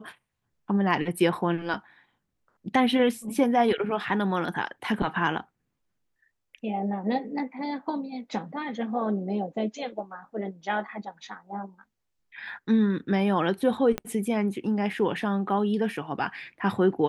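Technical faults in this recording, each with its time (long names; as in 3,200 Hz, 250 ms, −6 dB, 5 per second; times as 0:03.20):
0:13.98: click −14 dBFS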